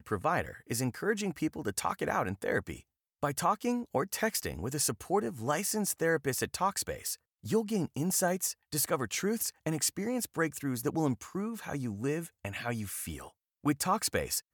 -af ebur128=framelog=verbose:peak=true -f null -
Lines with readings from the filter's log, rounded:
Integrated loudness:
  I:         -32.5 LUFS
  Threshold: -42.7 LUFS
Loudness range:
  LRA:         3.1 LU
  Threshold: -52.6 LUFS
  LRA low:   -34.6 LUFS
  LRA high:  -31.5 LUFS
True peak:
  Peak:      -16.7 dBFS